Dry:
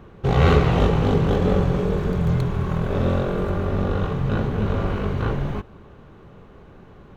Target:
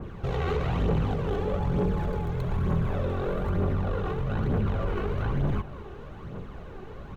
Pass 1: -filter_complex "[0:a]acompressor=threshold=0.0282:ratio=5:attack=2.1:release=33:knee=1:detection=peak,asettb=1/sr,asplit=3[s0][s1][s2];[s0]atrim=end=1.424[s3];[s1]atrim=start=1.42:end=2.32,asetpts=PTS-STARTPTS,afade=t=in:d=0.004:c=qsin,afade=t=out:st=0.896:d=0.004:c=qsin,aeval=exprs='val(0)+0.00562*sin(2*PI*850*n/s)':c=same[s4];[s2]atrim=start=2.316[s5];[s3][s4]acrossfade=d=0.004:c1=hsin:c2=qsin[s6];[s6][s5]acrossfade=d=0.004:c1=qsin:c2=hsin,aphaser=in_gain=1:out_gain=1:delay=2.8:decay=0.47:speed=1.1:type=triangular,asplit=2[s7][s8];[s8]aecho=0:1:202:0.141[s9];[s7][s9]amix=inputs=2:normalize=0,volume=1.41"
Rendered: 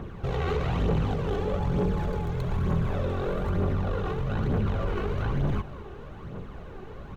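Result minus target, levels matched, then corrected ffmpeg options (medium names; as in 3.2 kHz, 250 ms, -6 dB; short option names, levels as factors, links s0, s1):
8 kHz band +3.0 dB
-filter_complex "[0:a]acompressor=threshold=0.0282:ratio=5:attack=2.1:release=33:knee=1:detection=peak,adynamicequalizer=threshold=0.00112:dfrequency=5800:dqfactor=0.72:tfrequency=5800:tqfactor=0.72:attack=5:release=100:ratio=0.4:range=2:mode=cutabove:tftype=bell,asettb=1/sr,asplit=3[s0][s1][s2];[s0]atrim=end=1.424[s3];[s1]atrim=start=1.42:end=2.32,asetpts=PTS-STARTPTS,afade=t=in:d=0.004:c=qsin,afade=t=out:st=0.896:d=0.004:c=qsin,aeval=exprs='val(0)+0.00562*sin(2*PI*850*n/s)':c=same[s4];[s2]atrim=start=2.316[s5];[s3][s4]acrossfade=d=0.004:c1=hsin:c2=qsin[s6];[s6][s5]acrossfade=d=0.004:c1=qsin:c2=hsin,aphaser=in_gain=1:out_gain=1:delay=2.8:decay=0.47:speed=1.1:type=triangular,asplit=2[s7][s8];[s8]aecho=0:1:202:0.141[s9];[s7][s9]amix=inputs=2:normalize=0,volume=1.41"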